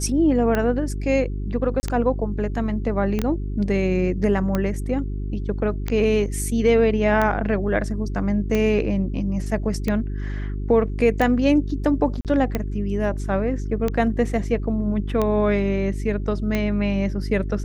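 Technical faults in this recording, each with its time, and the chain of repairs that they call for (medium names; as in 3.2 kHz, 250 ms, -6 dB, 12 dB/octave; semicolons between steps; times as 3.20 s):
hum 50 Hz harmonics 8 -27 dBFS
tick 45 rpm -10 dBFS
1.80–1.83 s: dropout 30 ms
3.19 s: pop -12 dBFS
12.21–12.25 s: dropout 38 ms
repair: de-click; de-hum 50 Hz, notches 8; interpolate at 1.80 s, 30 ms; interpolate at 12.21 s, 38 ms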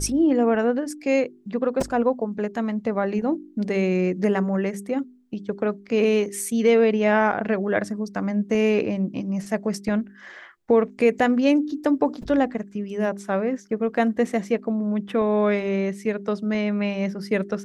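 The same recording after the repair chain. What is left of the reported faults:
3.19 s: pop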